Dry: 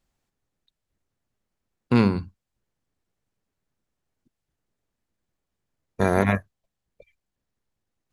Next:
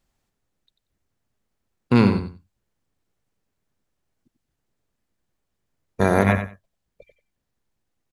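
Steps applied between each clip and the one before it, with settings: feedback delay 92 ms, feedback 17%, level -9.5 dB; trim +2.5 dB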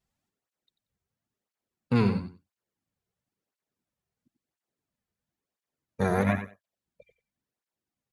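cancelling through-zero flanger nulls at 0.98 Hz, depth 3.7 ms; trim -5 dB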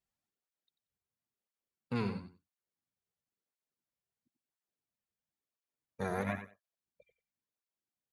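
bass shelf 350 Hz -5 dB; trim -8 dB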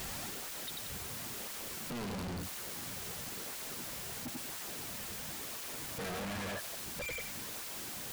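one-bit comparator; trim +7 dB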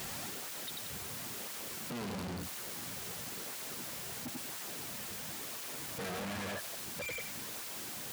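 high-pass 84 Hz

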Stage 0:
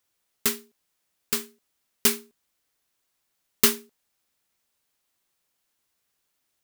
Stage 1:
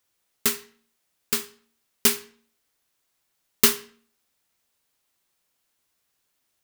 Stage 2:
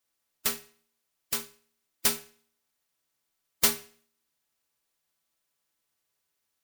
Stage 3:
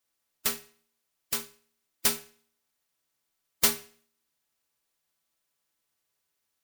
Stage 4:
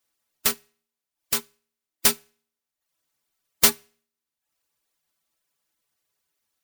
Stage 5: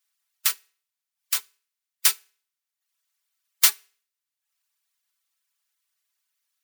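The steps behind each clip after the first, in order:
reverberation RT60 0.50 s, pre-delay 14 ms, DRR 10.5 dB; trim +1.5 dB
spectral contrast reduction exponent 0.31; inharmonic resonator 75 Hz, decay 0.25 s, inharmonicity 0.008; trim +2 dB
no audible change
reverb removal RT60 0.76 s; in parallel at -11 dB: bit crusher 7-bit; on the sum: trim +4 dB
high-pass 1.3 kHz 12 dB/octave

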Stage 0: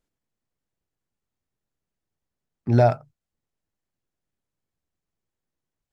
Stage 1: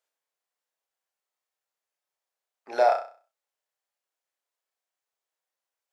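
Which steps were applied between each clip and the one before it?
high-pass 550 Hz 24 dB/octave; on a send: flutter echo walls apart 5.5 m, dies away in 0.39 s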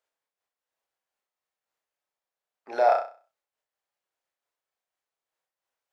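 treble shelf 4.2 kHz -8 dB; in parallel at -1.5 dB: peak limiter -21 dBFS, peak gain reduction 10.5 dB; on the sum: random flutter of the level, depth 65%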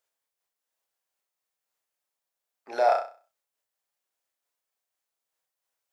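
treble shelf 4.7 kHz +9.5 dB; trim -1.5 dB

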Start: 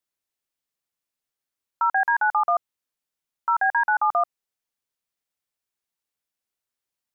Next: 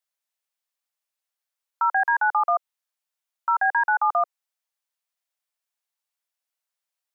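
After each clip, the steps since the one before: steep high-pass 540 Hz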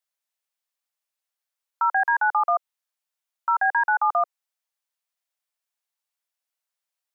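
no audible change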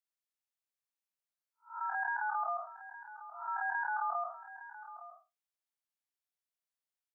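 spectral blur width 182 ms; delay 863 ms -14.5 dB; trim -8.5 dB

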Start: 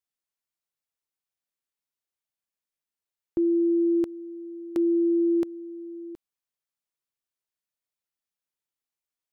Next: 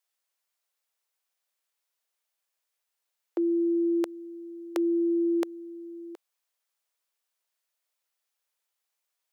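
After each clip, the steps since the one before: high-pass 460 Hz 24 dB/octave; trim +8 dB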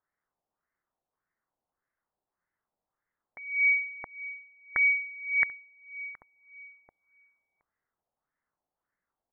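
frequency inversion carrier 2.6 kHz; echo from a far wall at 250 m, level -16 dB; LFO low-pass sine 1.7 Hz 740–1900 Hz

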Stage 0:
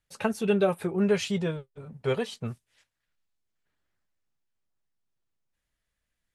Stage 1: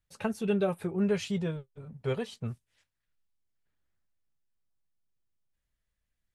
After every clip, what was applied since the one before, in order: bass shelf 180 Hz +8 dB; trim -6 dB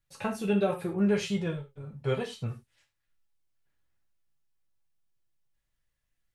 reverberation, pre-delay 3 ms, DRR 0.5 dB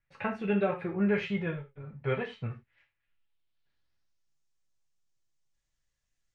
low-pass sweep 2.1 kHz -> 6.7 kHz, 2.76–4.37 s; trim -2 dB

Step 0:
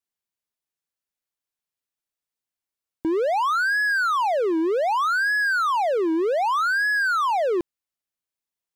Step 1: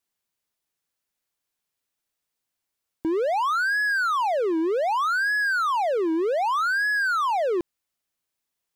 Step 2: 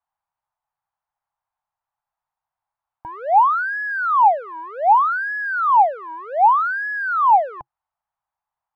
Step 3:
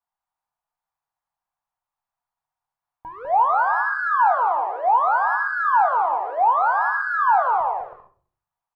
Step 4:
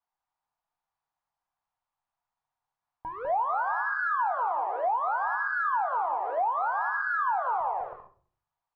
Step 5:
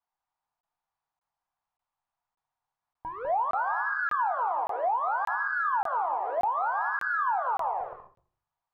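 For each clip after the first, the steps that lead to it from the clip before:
peak limiter -25 dBFS, peak gain reduction 8 dB; trim +6.5 dB
FFT filter 130 Hz 0 dB, 340 Hz -27 dB, 830 Hz +14 dB, 2.3 kHz -9 dB, 5.9 kHz -23 dB, 13 kHz -21 dB
bouncing-ball echo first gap 200 ms, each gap 0.6×, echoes 5; on a send at -6 dB: reverberation RT60 0.50 s, pre-delay 4 ms; on the sum: trim -4.5 dB
compression, threshold -25 dBFS, peak gain reduction 11.5 dB; distance through air 93 m
crackling interface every 0.58 s, samples 1024, zero, from 0.61 s

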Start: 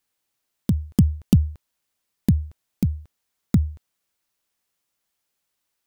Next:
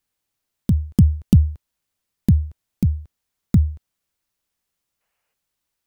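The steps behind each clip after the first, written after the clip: time-frequency box 5.01–5.33 s, 420–3000 Hz +9 dB; bass shelf 160 Hz +9 dB; trim -2 dB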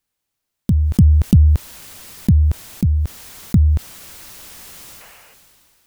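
decay stretcher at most 22 dB/s; trim +1 dB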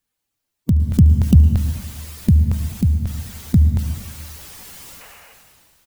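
coarse spectral quantiser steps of 15 dB; delay 73 ms -20 dB; plate-style reverb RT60 1.3 s, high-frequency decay 0.85×, pre-delay 100 ms, DRR 8.5 dB

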